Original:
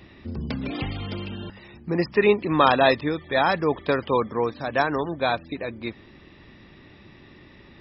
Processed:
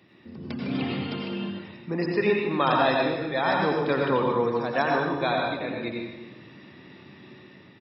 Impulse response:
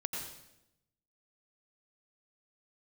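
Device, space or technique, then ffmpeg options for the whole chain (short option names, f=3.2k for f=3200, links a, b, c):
far laptop microphone: -filter_complex "[0:a]aecho=1:1:250:0.15[a];[1:a]atrim=start_sample=2205[b];[a][b]afir=irnorm=-1:irlink=0,highpass=f=120:w=0.5412,highpass=f=120:w=1.3066,dynaudnorm=f=180:g=7:m=7dB,volume=-7.5dB"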